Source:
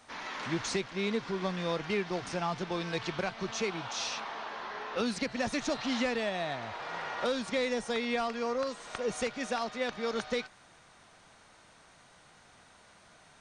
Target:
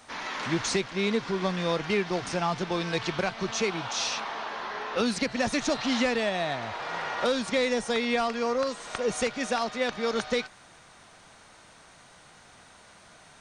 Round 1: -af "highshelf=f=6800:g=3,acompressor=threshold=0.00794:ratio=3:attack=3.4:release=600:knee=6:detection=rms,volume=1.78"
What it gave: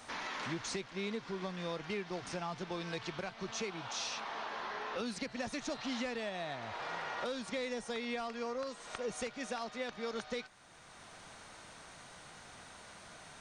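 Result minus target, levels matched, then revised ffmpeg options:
compression: peak gain reduction +13.5 dB
-af "highshelf=f=6800:g=3,volume=1.78"

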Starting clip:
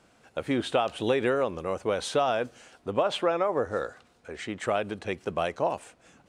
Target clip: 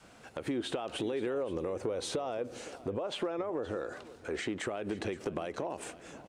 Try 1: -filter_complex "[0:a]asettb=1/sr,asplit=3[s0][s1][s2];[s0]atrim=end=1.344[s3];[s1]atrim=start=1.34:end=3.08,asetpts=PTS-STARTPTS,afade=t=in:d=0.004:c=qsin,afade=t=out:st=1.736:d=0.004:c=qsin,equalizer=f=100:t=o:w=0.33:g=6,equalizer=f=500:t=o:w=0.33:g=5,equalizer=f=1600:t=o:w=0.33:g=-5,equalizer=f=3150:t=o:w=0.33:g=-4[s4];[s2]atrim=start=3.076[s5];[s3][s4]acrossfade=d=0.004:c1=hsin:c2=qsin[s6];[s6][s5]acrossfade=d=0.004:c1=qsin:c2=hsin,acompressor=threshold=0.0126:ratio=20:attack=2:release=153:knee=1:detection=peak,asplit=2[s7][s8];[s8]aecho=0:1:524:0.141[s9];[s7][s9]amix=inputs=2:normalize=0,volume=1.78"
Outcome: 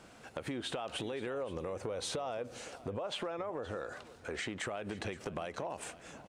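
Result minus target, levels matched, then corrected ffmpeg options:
250 Hz band -2.5 dB
-filter_complex "[0:a]asettb=1/sr,asplit=3[s0][s1][s2];[s0]atrim=end=1.344[s3];[s1]atrim=start=1.34:end=3.08,asetpts=PTS-STARTPTS,afade=t=in:d=0.004:c=qsin,afade=t=out:st=1.736:d=0.004:c=qsin,equalizer=f=100:t=o:w=0.33:g=6,equalizer=f=500:t=o:w=0.33:g=5,equalizer=f=1600:t=o:w=0.33:g=-5,equalizer=f=3150:t=o:w=0.33:g=-4[s4];[s2]atrim=start=3.076[s5];[s3][s4]acrossfade=d=0.004:c1=hsin:c2=qsin[s6];[s6][s5]acrossfade=d=0.004:c1=qsin:c2=hsin,acompressor=threshold=0.0126:ratio=20:attack=2:release=153:knee=1:detection=peak,adynamicequalizer=threshold=0.00112:dfrequency=340:dqfactor=1.3:tfrequency=340:tqfactor=1.3:attack=5:release=100:ratio=0.417:range=4:mode=boostabove:tftype=bell,asplit=2[s7][s8];[s8]aecho=0:1:524:0.141[s9];[s7][s9]amix=inputs=2:normalize=0,volume=1.78"

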